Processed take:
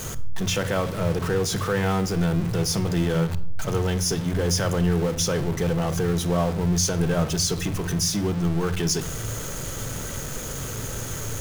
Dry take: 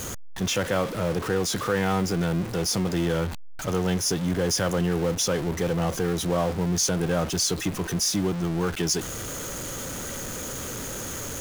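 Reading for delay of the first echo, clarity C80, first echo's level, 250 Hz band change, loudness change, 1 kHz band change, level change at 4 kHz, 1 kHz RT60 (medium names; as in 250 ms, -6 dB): no echo, 20.5 dB, no echo, +1.5 dB, +1.5 dB, 0.0 dB, +0.5 dB, 0.65 s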